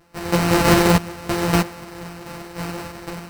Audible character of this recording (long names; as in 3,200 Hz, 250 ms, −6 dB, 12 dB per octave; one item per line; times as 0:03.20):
a buzz of ramps at a fixed pitch in blocks of 256 samples
sample-and-hold tremolo 3.1 Hz, depth 85%
aliases and images of a low sample rate 3,400 Hz, jitter 0%
a shimmering, thickened sound